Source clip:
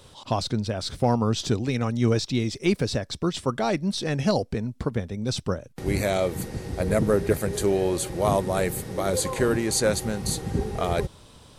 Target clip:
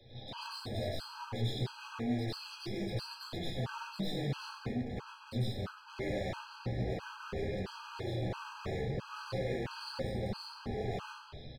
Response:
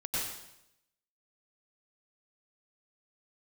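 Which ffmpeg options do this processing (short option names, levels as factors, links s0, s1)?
-filter_complex "[0:a]acrossover=split=110|220|1000[s0][s1][s2][s3];[s0]acompressor=threshold=0.0141:ratio=4[s4];[s1]acompressor=threshold=0.00891:ratio=4[s5];[s2]acompressor=threshold=0.0355:ratio=4[s6];[s3]acompressor=threshold=0.0158:ratio=4[s7];[s4][s5][s6][s7]amix=inputs=4:normalize=0,aresample=11025,asoftclip=type=tanh:threshold=0.0316,aresample=44100,flanger=delay=8.4:depth=8.7:regen=20:speed=0.38:shape=triangular,asoftclip=type=hard:threshold=0.0112,asplit=2[s8][s9];[s9]adelay=15,volume=0.299[s10];[s8][s10]amix=inputs=2:normalize=0[s11];[1:a]atrim=start_sample=2205[s12];[s11][s12]afir=irnorm=-1:irlink=0,afftfilt=real='re*gt(sin(2*PI*1.5*pts/sr)*(1-2*mod(floor(b*sr/1024/820),2)),0)':imag='im*gt(sin(2*PI*1.5*pts/sr)*(1-2*mod(floor(b*sr/1024/820),2)),0)':win_size=1024:overlap=0.75"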